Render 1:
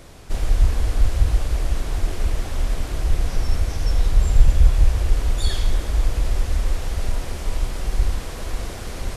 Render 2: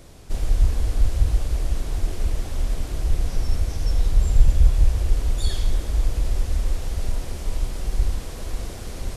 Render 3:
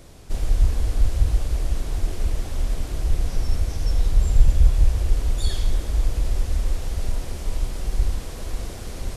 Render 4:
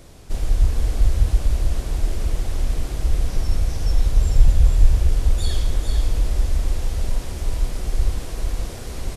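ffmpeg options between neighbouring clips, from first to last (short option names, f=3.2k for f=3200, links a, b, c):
-af "equalizer=f=1.5k:t=o:w=2.5:g=-5,volume=-1.5dB"
-af anull
-af "aecho=1:1:448:0.501,volume=1dB"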